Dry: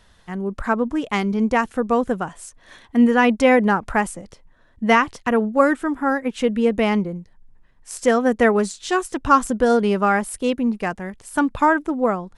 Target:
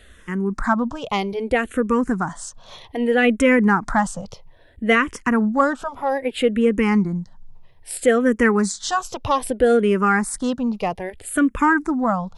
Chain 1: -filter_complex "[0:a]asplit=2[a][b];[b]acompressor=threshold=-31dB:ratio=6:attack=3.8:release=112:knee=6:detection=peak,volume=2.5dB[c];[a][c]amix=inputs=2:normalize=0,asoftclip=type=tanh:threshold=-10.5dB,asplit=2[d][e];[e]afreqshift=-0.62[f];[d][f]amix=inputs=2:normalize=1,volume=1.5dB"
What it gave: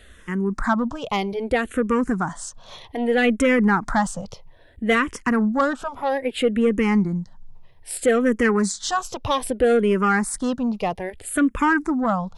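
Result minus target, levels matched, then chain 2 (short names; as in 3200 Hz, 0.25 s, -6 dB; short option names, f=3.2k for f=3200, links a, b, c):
soft clip: distortion +11 dB
-filter_complex "[0:a]asplit=2[a][b];[b]acompressor=threshold=-31dB:ratio=6:attack=3.8:release=112:knee=6:detection=peak,volume=2.5dB[c];[a][c]amix=inputs=2:normalize=0,asoftclip=type=tanh:threshold=-2.5dB,asplit=2[d][e];[e]afreqshift=-0.62[f];[d][f]amix=inputs=2:normalize=1,volume=1.5dB"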